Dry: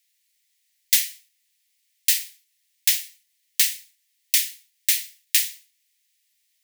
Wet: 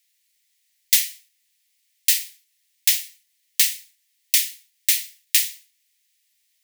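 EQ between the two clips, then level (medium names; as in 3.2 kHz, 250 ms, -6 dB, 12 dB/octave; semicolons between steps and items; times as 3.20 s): dynamic bell 1.5 kHz, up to -5 dB, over -51 dBFS, Q 4.3; +1.5 dB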